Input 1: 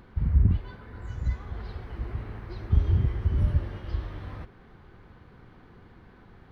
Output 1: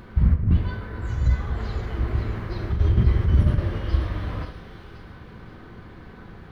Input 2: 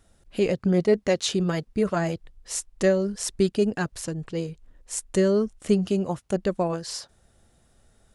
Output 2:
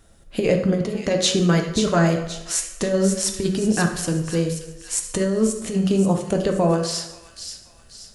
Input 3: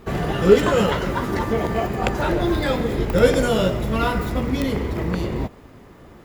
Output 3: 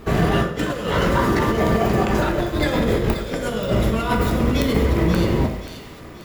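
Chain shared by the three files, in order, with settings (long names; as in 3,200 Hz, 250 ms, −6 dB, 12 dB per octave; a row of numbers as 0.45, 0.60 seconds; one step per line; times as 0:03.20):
notch filter 860 Hz, Q 18
hum removal 93.74 Hz, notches 36
compressor whose output falls as the input rises −23 dBFS, ratio −0.5
delay with a high-pass on its return 531 ms, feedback 42%, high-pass 2,800 Hz, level −6.5 dB
dense smooth reverb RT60 1 s, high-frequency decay 0.65×, DRR 4.5 dB
normalise the peak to −6 dBFS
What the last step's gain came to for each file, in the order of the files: +6.0, +4.5, +2.5 decibels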